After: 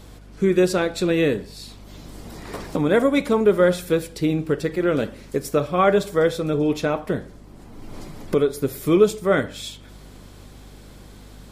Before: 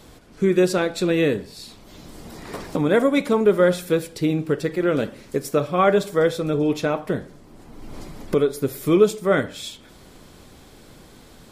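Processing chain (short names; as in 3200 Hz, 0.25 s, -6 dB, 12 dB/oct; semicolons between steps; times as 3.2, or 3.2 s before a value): hum 50 Hz, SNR 23 dB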